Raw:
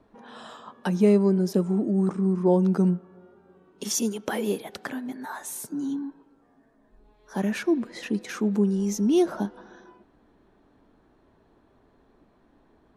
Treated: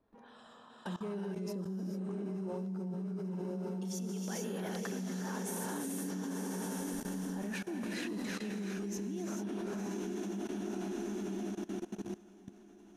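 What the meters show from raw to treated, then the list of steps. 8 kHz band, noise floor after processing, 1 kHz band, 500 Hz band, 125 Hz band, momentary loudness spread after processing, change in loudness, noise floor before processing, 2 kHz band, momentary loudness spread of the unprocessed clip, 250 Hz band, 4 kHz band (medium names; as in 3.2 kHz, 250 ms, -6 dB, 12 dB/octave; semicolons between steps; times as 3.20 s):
-8.5 dB, -57 dBFS, -9.0 dB, -13.5 dB, -11.5 dB, 6 LU, -13.5 dB, -62 dBFS, -7.0 dB, 15 LU, -11.5 dB, -8.5 dB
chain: echo that smears into a reverb 1019 ms, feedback 54%, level -9 dB; reverse; compression 10:1, threshold -31 dBFS, peak gain reduction 17 dB; reverse; gated-style reverb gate 470 ms rising, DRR 0 dB; level held to a coarse grid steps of 19 dB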